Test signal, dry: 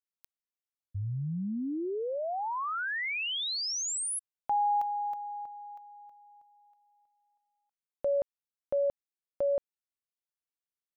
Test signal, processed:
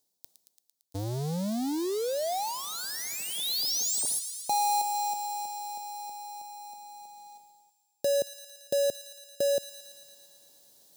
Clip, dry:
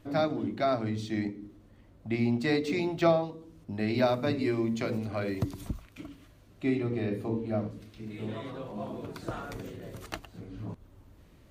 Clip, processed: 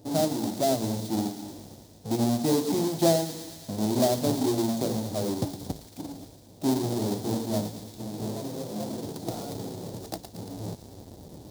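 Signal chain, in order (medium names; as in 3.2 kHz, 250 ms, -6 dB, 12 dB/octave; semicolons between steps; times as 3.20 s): square wave that keeps the level; reverse; upward compressor, threshold -37 dBFS; reverse; Bessel high-pass 150 Hz, order 2; bass shelf 370 Hz +2.5 dB; in parallel at -2 dB: compression, threshold -38 dBFS; on the sum: high-order bell 1.8 kHz -15 dB; feedback echo behind a high-pass 113 ms, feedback 75%, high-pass 1.7 kHz, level -10 dB; trim -2 dB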